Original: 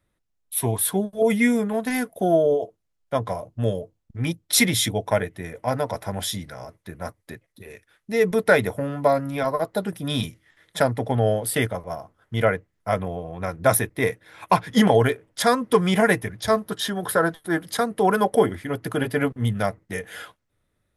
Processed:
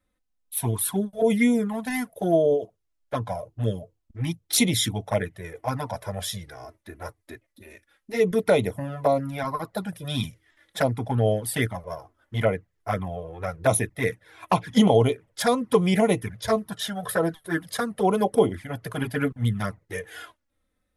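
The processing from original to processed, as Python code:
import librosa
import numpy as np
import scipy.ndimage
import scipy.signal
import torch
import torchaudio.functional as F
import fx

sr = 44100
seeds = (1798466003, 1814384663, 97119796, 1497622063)

y = fx.env_flanger(x, sr, rest_ms=3.9, full_db=-15.0)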